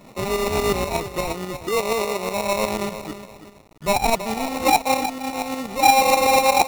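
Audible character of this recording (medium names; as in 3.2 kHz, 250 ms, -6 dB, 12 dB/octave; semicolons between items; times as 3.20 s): a quantiser's noise floor 8-bit, dither none; tremolo saw up 8.3 Hz, depth 60%; aliases and images of a low sample rate 1.6 kHz, jitter 0%; AAC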